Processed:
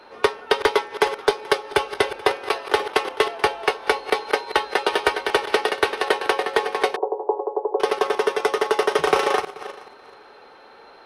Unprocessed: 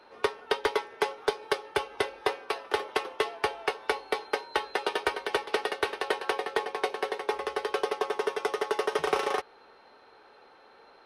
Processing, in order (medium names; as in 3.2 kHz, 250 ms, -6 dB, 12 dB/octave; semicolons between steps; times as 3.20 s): backward echo that repeats 216 ms, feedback 40%, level -14 dB; 6.96–7.80 s: Chebyshev band-pass 310–980 Hz, order 4; trim +8.5 dB